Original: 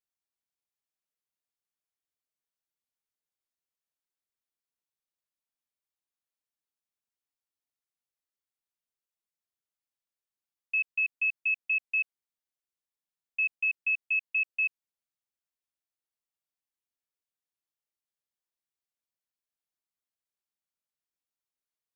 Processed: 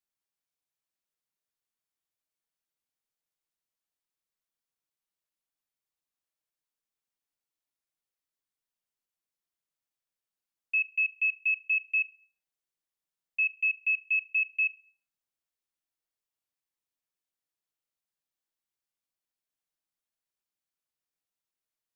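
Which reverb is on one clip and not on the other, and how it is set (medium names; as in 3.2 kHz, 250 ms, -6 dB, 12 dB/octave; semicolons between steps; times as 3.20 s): simulated room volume 670 m³, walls furnished, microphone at 0.62 m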